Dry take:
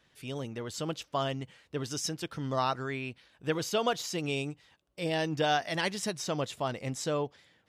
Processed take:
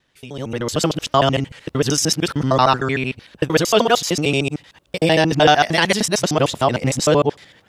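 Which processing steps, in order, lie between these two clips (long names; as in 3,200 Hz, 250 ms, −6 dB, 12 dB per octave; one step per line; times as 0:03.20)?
reversed piece by piece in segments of 76 ms
automatic gain control gain up to 16 dB
level +1 dB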